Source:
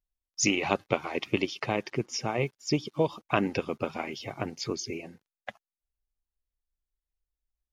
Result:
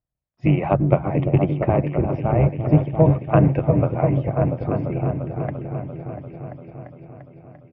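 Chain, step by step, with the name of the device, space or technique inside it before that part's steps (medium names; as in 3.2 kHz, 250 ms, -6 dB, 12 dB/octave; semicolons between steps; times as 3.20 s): tilt shelf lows +7.5 dB, about 1.4 kHz; band-stop 6.1 kHz, Q 5.5; delay with an opening low-pass 344 ms, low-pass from 400 Hz, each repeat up 1 oct, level -3 dB; feedback delay 700 ms, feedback 52%, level -20 dB; sub-octave bass pedal (octave divider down 1 oct, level -1 dB; cabinet simulation 63–2400 Hz, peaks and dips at 140 Hz +9 dB, 230 Hz -5 dB, 420 Hz -5 dB, 630 Hz +7 dB); trim +1 dB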